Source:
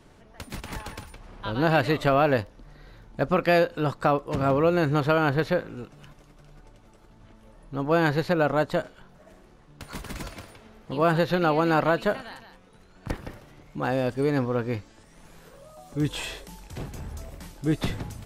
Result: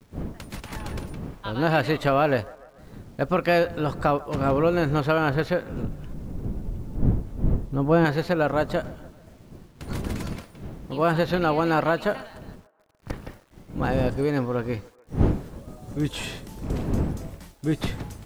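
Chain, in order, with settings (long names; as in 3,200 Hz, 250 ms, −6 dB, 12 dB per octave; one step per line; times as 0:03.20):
0:12.23–0:13.24: gain on one half-wave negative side −7 dB
wind on the microphone 220 Hz −34 dBFS
0:05.83–0:08.05: spectral tilt −2.5 dB per octave
downward expander −36 dBFS
bit-depth reduction 10 bits, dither none
on a send: delay with a band-pass on its return 145 ms, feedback 51%, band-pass 860 Hz, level −19.5 dB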